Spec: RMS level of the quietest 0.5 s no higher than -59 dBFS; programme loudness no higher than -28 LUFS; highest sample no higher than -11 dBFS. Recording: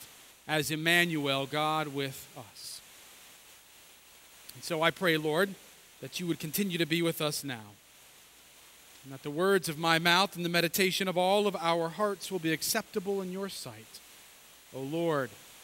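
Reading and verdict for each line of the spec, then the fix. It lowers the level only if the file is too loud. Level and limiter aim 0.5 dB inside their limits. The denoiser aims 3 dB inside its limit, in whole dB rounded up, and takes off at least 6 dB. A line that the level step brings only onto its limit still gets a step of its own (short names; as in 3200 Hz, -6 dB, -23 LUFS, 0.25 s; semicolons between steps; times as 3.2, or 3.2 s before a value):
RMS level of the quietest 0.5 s -57 dBFS: fail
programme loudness -29.5 LUFS: OK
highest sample -8.0 dBFS: fail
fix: denoiser 6 dB, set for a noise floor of -57 dBFS; limiter -11.5 dBFS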